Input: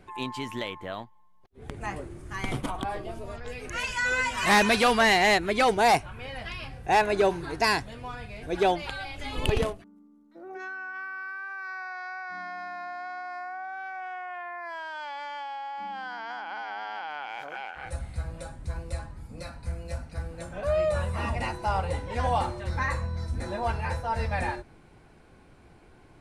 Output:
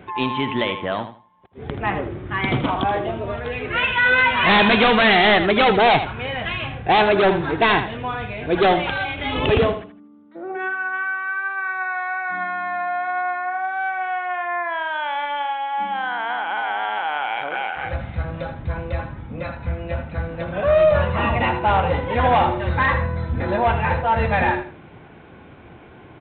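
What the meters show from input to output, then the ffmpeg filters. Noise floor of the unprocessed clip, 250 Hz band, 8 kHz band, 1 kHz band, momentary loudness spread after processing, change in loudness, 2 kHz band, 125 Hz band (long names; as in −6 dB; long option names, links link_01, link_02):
−55 dBFS, +9.5 dB, below −40 dB, +8.5 dB, 13 LU, +8.5 dB, +9.0 dB, +8.0 dB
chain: -af "highpass=83,aresample=8000,aeval=exprs='0.266*sin(PI/2*2.51*val(0)/0.266)':channel_layout=same,aresample=44100,aecho=1:1:80|160|240:0.316|0.0727|0.0167"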